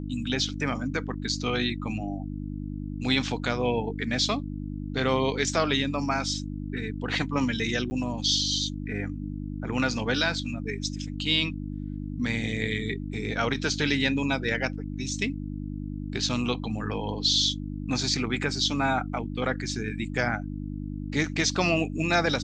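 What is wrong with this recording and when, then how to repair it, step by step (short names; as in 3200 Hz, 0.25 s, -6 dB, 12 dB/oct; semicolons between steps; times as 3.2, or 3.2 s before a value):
hum 50 Hz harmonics 6 -34 dBFS
7.9–7.91 gap 10 ms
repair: de-hum 50 Hz, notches 6; interpolate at 7.9, 10 ms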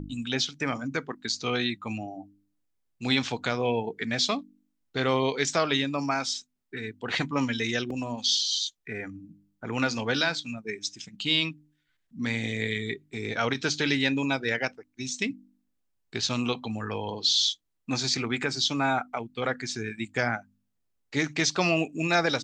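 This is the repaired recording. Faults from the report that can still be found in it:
none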